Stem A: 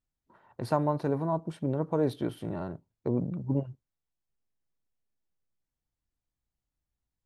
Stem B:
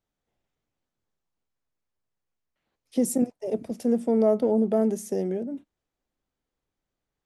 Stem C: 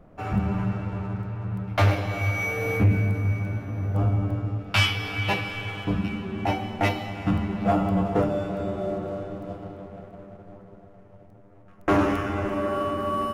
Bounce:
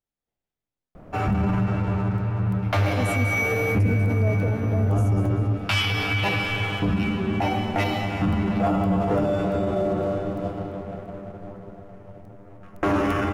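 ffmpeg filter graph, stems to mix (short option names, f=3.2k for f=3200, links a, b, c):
-filter_complex "[1:a]volume=-8.5dB,asplit=2[a][b];[b]volume=-9.5dB[c];[2:a]alimiter=limit=-22.5dB:level=0:latency=1:release=23,acontrast=50,adelay=950,volume=1dB[d];[c]aecho=0:1:195|390|585|780|975|1170:1|0.4|0.16|0.064|0.0256|0.0102[e];[a][d][e]amix=inputs=3:normalize=0"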